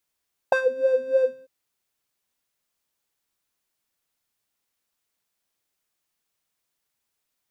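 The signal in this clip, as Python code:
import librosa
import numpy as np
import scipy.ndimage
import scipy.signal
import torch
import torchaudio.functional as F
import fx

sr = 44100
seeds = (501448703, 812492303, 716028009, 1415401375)

y = fx.sub_patch_wobble(sr, seeds[0], note=72, wave='square', wave2='saw', interval_st=0, level2_db=-15.5, sub_db=-29, noise_db=-20, kind='bandpass', cutoff_hz=210.0, q=3.7, env_oct=2.0, env_decay_s=0.22, env_sustain_pct=40, attack_ms=3.1, decay_s=0.09, sustain_db=-11, release_s=0.25, note_s=0.7, lfo_hz=3.3, wobble_oct=0.9)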